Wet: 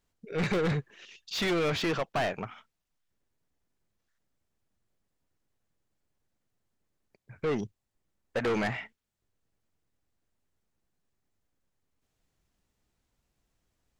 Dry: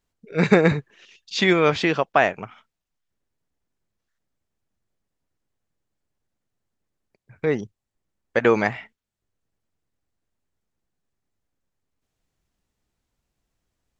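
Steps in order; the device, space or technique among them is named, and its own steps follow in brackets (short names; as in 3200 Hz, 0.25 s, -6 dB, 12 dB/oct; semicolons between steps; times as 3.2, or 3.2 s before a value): saturation between pre-emphasis and de-emphasis (high shelf 5000 Hz +11 dB; soft clip -25 dBFS, distortion -4 dB; high shelf 5000 Hz -11 dB)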